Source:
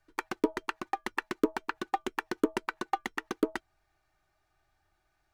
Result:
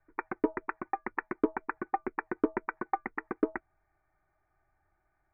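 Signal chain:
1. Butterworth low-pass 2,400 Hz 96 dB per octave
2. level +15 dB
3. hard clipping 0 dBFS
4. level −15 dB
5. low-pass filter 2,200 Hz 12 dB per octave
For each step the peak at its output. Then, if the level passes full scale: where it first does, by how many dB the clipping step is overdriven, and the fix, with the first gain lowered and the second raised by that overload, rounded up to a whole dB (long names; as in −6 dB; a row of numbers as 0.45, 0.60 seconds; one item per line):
−11.0, +4.0, 0.0, −15.0, −15.0 dBFS
step 2, 4.0 dB
step 2 +11 dB, step 4 −11 dB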